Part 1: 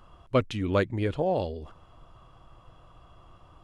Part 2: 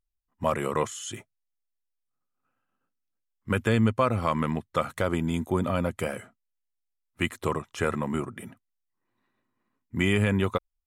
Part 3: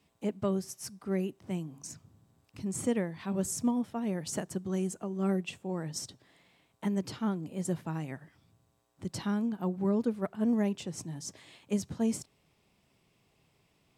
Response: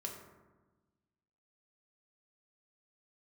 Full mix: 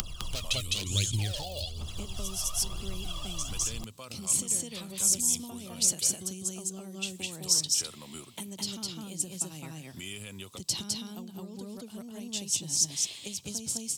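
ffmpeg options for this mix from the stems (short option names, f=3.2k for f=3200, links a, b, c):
-filter_complex "[0:a]acompressor=mode=upward:threshold=-29dB:ratio=2.5,aphaser=in_gain=1:out_gain=1:delay=1.8:decay=0.79:speed=1.1:type=triangular,volume=-1.5dB,asplit=3[a][b][c];[b]volume=-6dB[d];[1:a]alimiter=limit=-19dB:level=0:latency=1:release=396,volume=-15dB[e];[2:a]highshelf=f=4.8k:g=-6,acompressor=threshold=-42dB:ratio=1.5,adelay=1550,volume=0.5dB,asplit=2[f][g];[g]volume=-3.5dB[h];[c]apad=whole_len=684841[i];[f][i]sidechaincompress=threshold=-32dB:ratio=8:attack=16:release=1170[j];[a][j]amix=inputs=2:normalize=0,asoftclip=type=hard:threshold=-24.5dB,acompressor=threshold=-37dB:ratio=6,volume=0dB[k];[d][h]amix=inputs=2:normalize=0,aecho=0:1:207:1[l];[e][k][l]amix=inputs=3:normalize=0,acrossover=split=140|3000[m][n][o];[n]acompressor=threshold=-41dB:ratio=6[p];[m][p][o]amix=inputs=3:normalize=0,aexciter=amount=9.1:drive=4.1:freq=2.7k"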